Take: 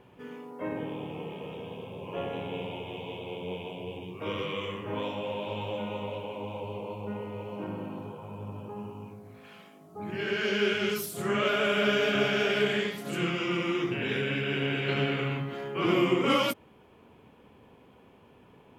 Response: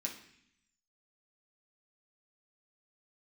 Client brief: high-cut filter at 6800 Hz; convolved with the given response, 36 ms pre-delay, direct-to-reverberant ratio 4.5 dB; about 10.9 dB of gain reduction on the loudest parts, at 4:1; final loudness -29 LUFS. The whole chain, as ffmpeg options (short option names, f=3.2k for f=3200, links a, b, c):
-filter_complex "[0:a]lowpass=6.8k,acompressor=threshold=-34dB:ratio=4,asplit=2[a][b];[1:a]atrim=start_sample=2205,adelay=36[c];[b][c]afir=irnorm=-1:irlink=0,volume=-4dB[d];[a][d]amix=inputs=2:normalize=0,volume=7dB"